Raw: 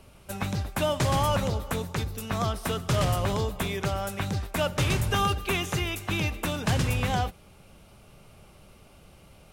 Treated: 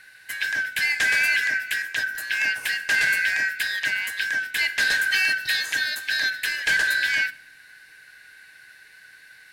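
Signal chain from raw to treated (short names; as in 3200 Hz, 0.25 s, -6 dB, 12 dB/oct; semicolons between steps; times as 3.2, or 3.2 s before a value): four-band scrambler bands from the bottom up 4123; shoebox room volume 1900 m³, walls furnished, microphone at 0.5 m; gain +3 dB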